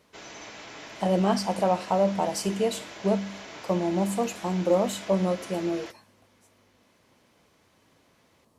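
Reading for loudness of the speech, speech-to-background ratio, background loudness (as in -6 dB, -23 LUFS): -27.0 LUFS, 14.5 dB, -41.5 LUFS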